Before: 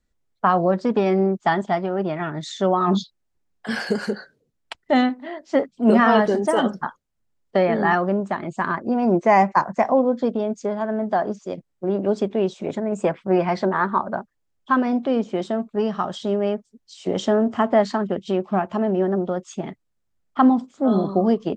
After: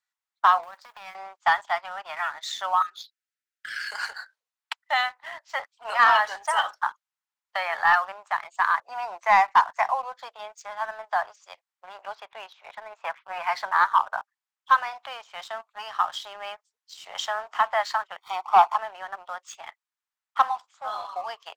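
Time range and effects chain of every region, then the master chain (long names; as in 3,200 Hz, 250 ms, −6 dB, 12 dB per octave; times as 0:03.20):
0:00.63–0:01.15: mu-law and A-law mismatch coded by A + downward compressor 12 to 1, threshold −25 dBFS
0:02.82–0:03.92: Chebyshev band-stop filter 410–1,300 Hz, order 5 + low-shelf EQ 170 Hz −8.5 dB + downward compressor 4 to 1, threshold −31 dBFS
0:12.15–0:13.47: running median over 5 samples + high-frequency loss of the air 180 metres
0:18.18–0:18.76: running median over 15 samples + parametric band 740 Hz +14.5 dB 0.85 octaves + comb filter 0.9 ms, depth 81%
whole clip: Butterworth high-pass 860 Hz 36 dB per octave; high-shelf EQ 5,200 Hz −5 dB; leveller curve on the samples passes 1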